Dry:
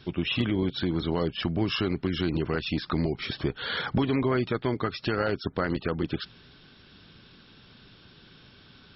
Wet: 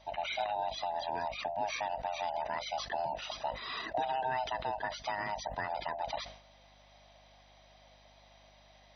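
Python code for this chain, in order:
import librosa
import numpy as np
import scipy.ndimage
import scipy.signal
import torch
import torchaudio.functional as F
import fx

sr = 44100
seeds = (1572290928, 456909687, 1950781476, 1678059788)

y = fx.band_swap(x, sr, width_hz=500)
y = scipy.signal.sosfilt(scipy.signal.butter(2, 140.0, 'highpass', fs=sr, output='sos'), y)
y = fx.add_hum(y, sr, base_hz=50, snr_db=27)
y = fx.sustainer(y, sr, db_per_s=95.0)
y = F.gain(torch.from_numpy(y), -8.5).numpy()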